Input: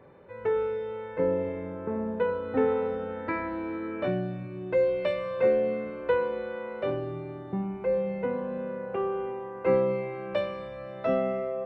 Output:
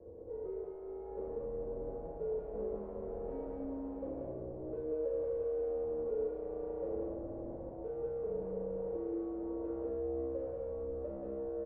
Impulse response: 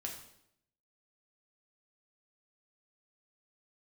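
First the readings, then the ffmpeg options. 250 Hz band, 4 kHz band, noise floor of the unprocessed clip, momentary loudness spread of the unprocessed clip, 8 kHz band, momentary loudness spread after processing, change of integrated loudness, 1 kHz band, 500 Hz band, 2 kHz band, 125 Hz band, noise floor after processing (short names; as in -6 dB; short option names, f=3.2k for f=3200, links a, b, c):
-9.5 dB, under -35 dB, -41 dBFS, 10 LU, n/a, 7 LU, -10.0 dB, -16.5 dB, -9.5 dB, under -30 dB, -12.0 dB, -46 dBFS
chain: -filter_complex "[0:a]dynaudnorm=f=210:g=21:m=11.5dB,lowshelf=f=300:g=12,acompressor=threshold=-28dB:ratio=3,aeval=exprs='(tanh(70.8*val(0)+0.3)-tanh(0.3))/70.8':c=same,lowpass=f=590:t=q:w=4.9,equalizer=f=200:w=5.9:g=-13,aecho=1:1:183.7|218.7:0.891|0.251[a];[1:a]atrim=start_sample=2205,asetrate=66150,aresample=44100[b];[a][b]afir=irnorm=-1:irlink=0,afreqshift=-55,volume=-4.5dB"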